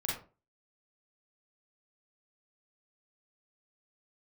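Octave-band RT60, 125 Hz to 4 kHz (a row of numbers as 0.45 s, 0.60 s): 0.40 s, 0.40 s, 0.40 s, 0.35 s, 0.25 s, 0.20 s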